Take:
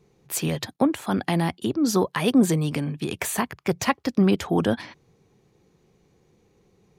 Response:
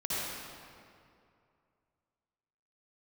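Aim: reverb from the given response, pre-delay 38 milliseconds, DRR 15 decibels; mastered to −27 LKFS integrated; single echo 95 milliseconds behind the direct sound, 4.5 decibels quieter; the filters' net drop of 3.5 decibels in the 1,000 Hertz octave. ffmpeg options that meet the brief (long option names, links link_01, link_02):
-filter_complex "[0:a]equalizer=frequency=1000:width_type=o:gain=-4.5,aecho=1:1:95:0.596,asplit=2[link_01][link_02];[1:a]atrim=start_sample=2205,adelay=38[link_03];[link_02][link_03]afir=irnorm=-1:irlink=0,volume=-22dB[link_04];[link_01][link_04]amix=inputs=2:normalize=0,volume=-4dB"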